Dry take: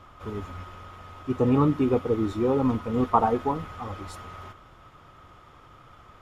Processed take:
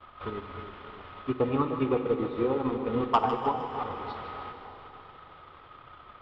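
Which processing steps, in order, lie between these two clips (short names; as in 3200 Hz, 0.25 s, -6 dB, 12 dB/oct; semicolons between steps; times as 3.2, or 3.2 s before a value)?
gate with hold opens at -44 dBFS; steep low-pass 4200 Hz 48 dB/oct; low shelf 410 Hz -7.5 dB; notches 50/100/150/200/250/300 Hz; in parallel at -2 dB: compressor, threshold -34 dBFS, peak gain reduction 16.5 dB; on the sum: transient shaper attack +6 dB, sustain -10 dB; soft clip -9.5 dBFS, distortion -15 dB; on a send: split-band echo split 940 Hz, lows 0.303 s, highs 0.154 s, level -9.5 dB; on the sum: Schroeder reverb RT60 3.8 s, combs from 31 ms, DRR 7.5 dB; gain -4 dB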